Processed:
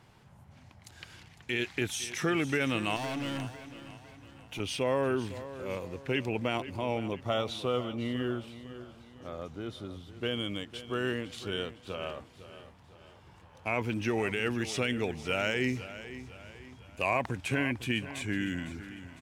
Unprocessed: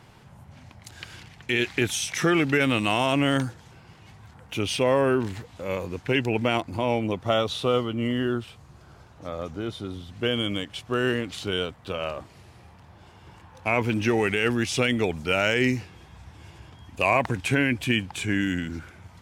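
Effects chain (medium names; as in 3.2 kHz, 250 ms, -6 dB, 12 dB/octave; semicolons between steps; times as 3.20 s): 2.96–4.60 s: hard clipper -25.5 dBFS, distortion -16 dB; on a send: feedback delay 504 ms, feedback 44%, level -14 dB; on the sum: trim -7.5 dB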